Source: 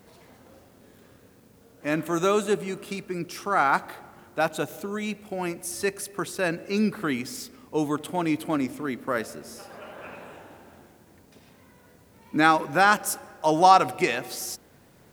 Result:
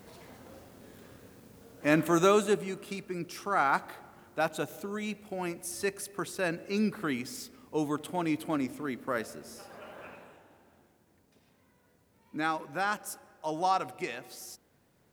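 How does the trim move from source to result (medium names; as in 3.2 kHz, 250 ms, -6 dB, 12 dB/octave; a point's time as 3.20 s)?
2.07 s +1.5 dB
2.75 s -5 dB
10.00 s -5 dB
10.41 s -12 dB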